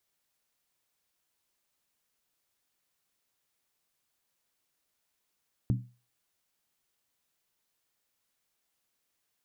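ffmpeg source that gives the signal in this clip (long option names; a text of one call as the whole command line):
ffmpeg -f lavfi -i "aevalsrc='0.0891*pow(10,-3*t/0.34)*sin(2*PI*122*t)+0.0447*pow(10,-3*t/0.269)*sin(2*PI*194.5*t)+0.0224*pow(10,-3*t/0.233)*sin(2*PI*260.6*t)+0.0112*pow(10,-3*t/0.224)*sin(2*PI*280.1*t)+0.00562*pow(10,-3*t/0.209)*sin(2*PI*323.7*t)':duration=0.63:sample_rate=44100" out.wav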